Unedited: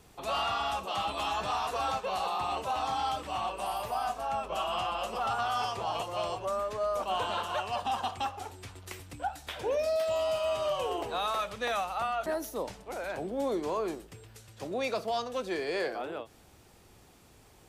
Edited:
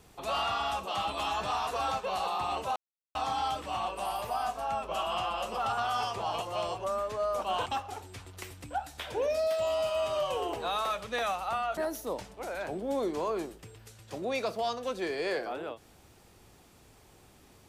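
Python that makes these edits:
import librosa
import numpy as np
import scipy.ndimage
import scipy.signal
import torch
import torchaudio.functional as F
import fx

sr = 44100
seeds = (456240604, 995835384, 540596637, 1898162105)

y = fx.edit(x, sr, fx.insert_silence(at_s=2.76, length_s=0.39),
    fx.cut(start_s=7.27, length_s=0.88), tone=tone)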